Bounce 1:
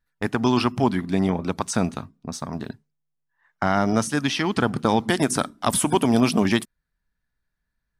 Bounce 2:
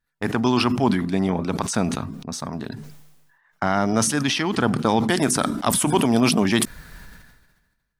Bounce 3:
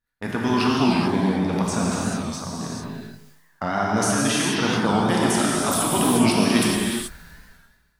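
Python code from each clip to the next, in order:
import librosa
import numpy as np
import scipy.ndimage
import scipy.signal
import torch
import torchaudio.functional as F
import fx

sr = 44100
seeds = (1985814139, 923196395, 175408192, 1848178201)

y1 = fx.low_shelf(x, sr, hz=62.0, db=-6.0)
y1 = fx.sustainer(y1, sr, db_per_s=45.0)
y2 = fx.rev_gated(y1, sr, seeds[0], gate_ms=460, shape='flat', drr_db=-5.0)
y2 = fx.record_warp(y2, sr, rpm=45.0, depth_cents=100.0)
y2 = y2 * 10.0 ** (-5.5 / 20.0)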